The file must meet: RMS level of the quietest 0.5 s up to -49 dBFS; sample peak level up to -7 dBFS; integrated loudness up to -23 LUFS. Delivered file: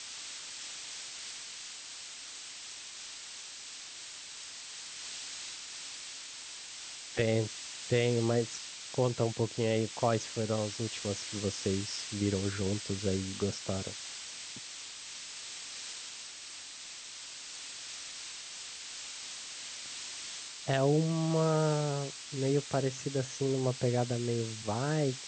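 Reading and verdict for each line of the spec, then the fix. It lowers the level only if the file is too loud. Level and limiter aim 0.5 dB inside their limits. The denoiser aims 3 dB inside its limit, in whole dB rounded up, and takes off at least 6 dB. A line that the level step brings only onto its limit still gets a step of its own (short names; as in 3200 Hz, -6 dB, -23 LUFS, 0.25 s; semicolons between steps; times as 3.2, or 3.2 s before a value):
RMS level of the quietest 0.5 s -46 dBFS: fail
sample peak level -14.0 dBFS: OK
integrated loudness -35.0 LUFS: OK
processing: denoiser 6 dB, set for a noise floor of -46 dBFS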